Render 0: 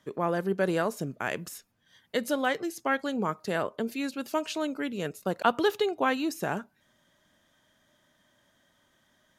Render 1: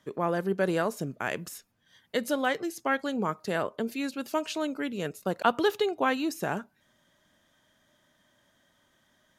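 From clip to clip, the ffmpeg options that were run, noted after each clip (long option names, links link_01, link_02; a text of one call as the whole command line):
ffmpeg -i in.wav -af anull out.wav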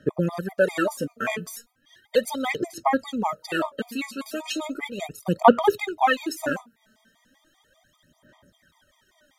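ffmpeg -i in.wav -af "aphaser=in_gain=1:out_gain=1:delay=4.6:decay=0.75:speed=0.36:type=sinusoidal,afftfilt=real='re*gt(sin(2*PI*5.1*pts/sr)*(1-2*mod(floor(b*sr/1024/630),2)),0)':imag='im*gt(sin(2*PI*5.1*pts/sr)*(1-2*mod(floor(b*sr/1024/630),2)),0)':win_size=1024:overlap=0.75,volume=4.5dB" out.wav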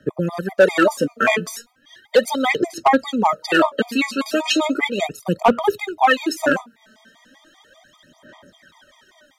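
ffmpeg -i in.wav -filter_complex "[0:a]acrossover=split=200|6900[link_01][link_02][link_03];[link_02]dynaudnorm=framelen=170:gausssize=5:maxgain=11dB[link_04];[link_01][link_04][link_03]amix=inputs=3:normalize=0,volume=7.5dB,asoftclip=hard,volume=-7.5dB,volume=1dB" out.wav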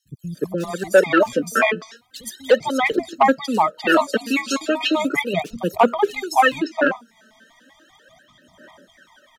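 ffmpeg -i in.wav -filter_complex "[0:a]acrossover=split=170|4400[link_01][link_02][link_03];[link_01]adelay=50[link_04];[link_02]adelay=350[link_05];[link_04][link_05][link_03]amix=inputs=3:normalize=0" out.wav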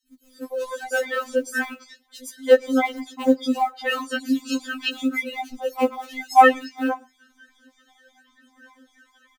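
ffmpeg -i in.wav -filter_complex "[0:a]asplit=2[link_01][link_02];[link_02]adelay=116.6,volume=-28dB,highshelf=frequency=4000:gain=-2.62[link_03];[link_01][link_03]amix=inputs=2:normalize=0,acrusher=bits=8:mode=log:mix=0:aa=0.000001,afftfilt=real='re*3.46*eq(mod(b,12),0)':imag='im*3.46*eq(mod(b,12),0)':win_size=2048:overlap=0.75,volume=-2.5dB" out.wav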